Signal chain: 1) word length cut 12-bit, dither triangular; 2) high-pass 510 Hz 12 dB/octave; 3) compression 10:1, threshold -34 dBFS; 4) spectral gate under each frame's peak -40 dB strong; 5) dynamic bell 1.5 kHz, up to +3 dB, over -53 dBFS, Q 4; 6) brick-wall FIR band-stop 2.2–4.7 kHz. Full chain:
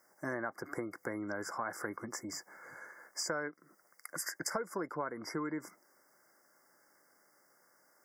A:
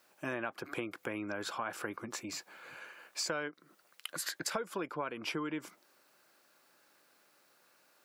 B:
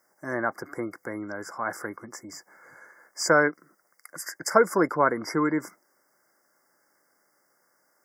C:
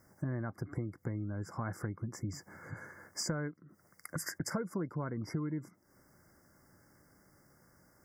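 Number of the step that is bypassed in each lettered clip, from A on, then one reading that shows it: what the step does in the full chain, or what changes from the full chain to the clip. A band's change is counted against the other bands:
6, 4 kHz band +5.0 dB; 3, mean gain reduction 7.0 dB; 2, 125 Hz band +17.0 dB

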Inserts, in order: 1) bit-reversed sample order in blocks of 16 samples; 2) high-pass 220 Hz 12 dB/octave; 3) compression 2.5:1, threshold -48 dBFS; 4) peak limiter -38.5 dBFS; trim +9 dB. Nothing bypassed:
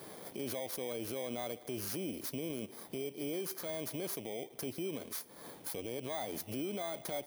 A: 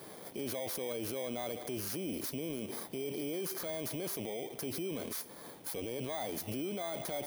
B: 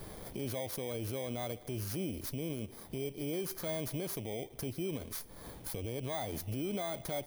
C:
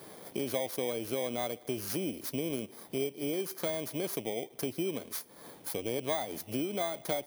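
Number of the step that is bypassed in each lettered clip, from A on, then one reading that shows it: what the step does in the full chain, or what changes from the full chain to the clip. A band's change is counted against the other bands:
3, mean gain reduction 13.0 dB; 2, 125 Hz band +8.0 dB; 4, mean gain reduction 3.0 dB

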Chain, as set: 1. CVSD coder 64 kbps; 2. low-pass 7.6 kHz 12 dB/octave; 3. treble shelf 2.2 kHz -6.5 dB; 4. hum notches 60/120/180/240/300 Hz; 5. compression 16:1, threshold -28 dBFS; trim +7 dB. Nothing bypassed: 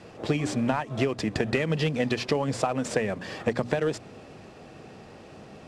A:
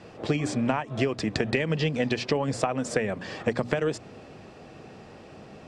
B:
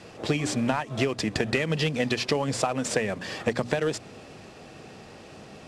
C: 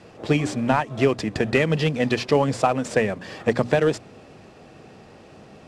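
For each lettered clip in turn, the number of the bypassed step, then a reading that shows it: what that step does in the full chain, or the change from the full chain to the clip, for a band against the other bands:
1, crest factor change +3.5 dB; 3, 8 kHz band +5.5 dB; 5, mean gain reduction 2.5 dB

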